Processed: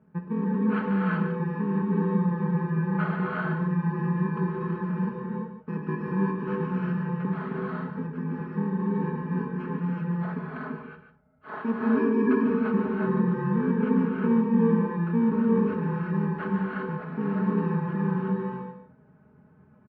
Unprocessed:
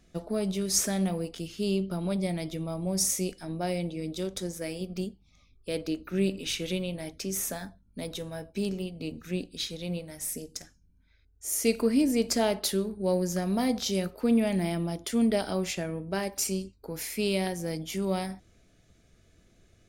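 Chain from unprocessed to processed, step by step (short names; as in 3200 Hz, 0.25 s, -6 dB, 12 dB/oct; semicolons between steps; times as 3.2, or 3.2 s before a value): FFT order left unsorted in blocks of 64 samples; elliptic band-pass 120–1600 Hz, stop band 60 dB; low shelf 190 Hz +12 dB; comb 4.7 ms, depth 82%; in parallel at -2.5 dB: negative-ratio compressor -29 dBFS; on the sum: echo 0.146 s -9.5 dB; non-linear reverb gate 0.4 s rising, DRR -3 dB; gain -6.5 dB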